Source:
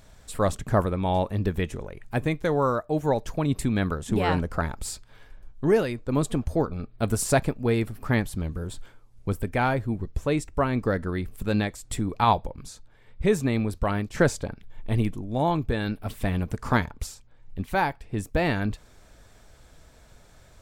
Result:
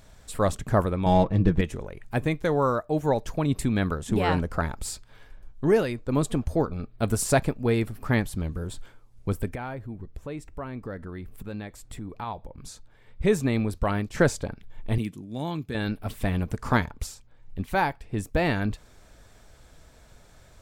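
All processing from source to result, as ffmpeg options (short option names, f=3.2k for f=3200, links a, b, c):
-filter_complex "[0:a]asettb=1/sr,asplit=3[a][b][c];[a]atrim=end=1.064[d];[b]atrim=start=1.06:end=1.61,asetpts=PTS-STARTPTS,afade=t=in:d=0.004:c=qsin,afade=t=out:st=0.546:d=0.004:c=qsin,lowshelf=f=290:g=7.5,adynamicsmooth=sensitivity=7.5:basefreq=2.3k,aecho=1:1:6.2:0.56,atrim=end_sample=24255[e];[c]atrim=start=1.606[f];[d][e]acrossfade=d=0.004:c1=hsin:c2=qsin[g];[g][f]acrossfade=d=0.004:c1=qsin:c2=hsin,asettb=1/sr,asplit=3[h][i][j];[h]atrim=end=9.554[k];[i]atrim=start=9.55:end=12.64,asetpts=PTS-STARTPTS,afade=t=in:d=0.004:c=qsin,afade=t=out:st=3.086:d=0.004:c=qsin,equalizer=f=7k:t=o:w=2:g=-6,acompressor=threshold=-40dB:ratio=2:attack=3.2:release=140:knee=1:detection=peak[l];[j]atrim=start=12.636[m];[k][l]acrossfade=d=0.004:c1=hsin:c2=qsin[n];[n][m]acrossfade=d=0.004:c1=qsin:c2=hsin,asettb=1/sr,asplit=3[o][p][q];[o]atrim=end=14.984[r];[p]atrim=start=14.98:end=15.75,asetpts=PTS-STARTPTS,afade=t=in:d=0.004:c=qsin,afade=t=out:st=0.766:d=0.004:c=qsin,highpass=160,equalizer=f=730:w=0.63:g=-11.5[s];[q]atrim=start=15.746[t];[r][s]acrossfade=d=0.004:c1=hsin:c2=qsin[u];[u][t]acrossfade=d=0.004:c1=qsin:c2=hsin"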